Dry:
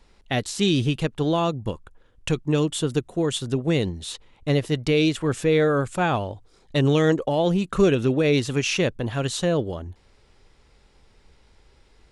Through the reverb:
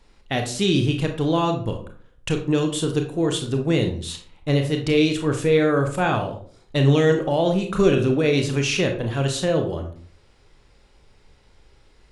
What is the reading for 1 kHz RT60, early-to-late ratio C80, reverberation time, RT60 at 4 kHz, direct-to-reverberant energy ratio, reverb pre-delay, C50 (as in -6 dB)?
0.40 s, 13.0 dB, 0.45 s, 0.30 s, 4.0 dB, 25 ms, 8.5 dB